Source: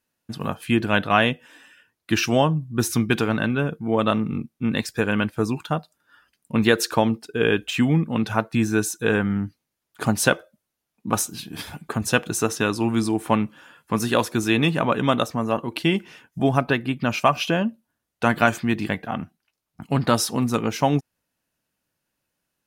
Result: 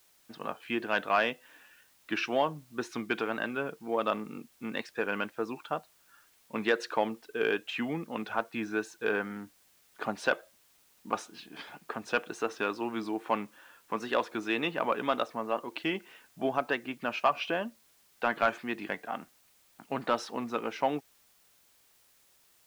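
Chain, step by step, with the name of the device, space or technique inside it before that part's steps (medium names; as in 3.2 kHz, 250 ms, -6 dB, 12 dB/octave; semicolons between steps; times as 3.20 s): tape answering machine (band-pass 380–3000 Hz; saturation -7 dBFS, distortion -20 dB; wow and flutter; white noise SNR 31 dB); trim -6 dB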